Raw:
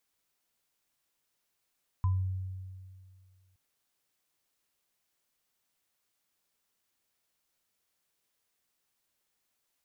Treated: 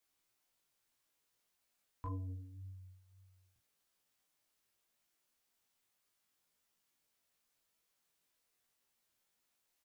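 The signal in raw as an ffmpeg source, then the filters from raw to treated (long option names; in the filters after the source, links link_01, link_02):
-f lavfi -i "aevalsrc='0.0708*pow(10,-3*t/2.09)*sin(2*PI*93.8*t)+0.0158*pow(10,-3*t/0.28)*sin(2*PI*1010*t)':duration=1.52:sample_rate=44100"
-filter_complex "[0:a]acrossover=split=580[link_01][link_02];[link_01]asoftclip=type=tanh:threshold=-35.5dB[link_03];[link_03][link_02]amix=inputs=2:normalize=0,flanger=delay=20:depth=5.5:speed=1.8,asplit=2[link_04][link_05];[link_05]adelay=17,volume=-5dB[link_06];[link_04][link_06]amix=inputs=2:normalize=0"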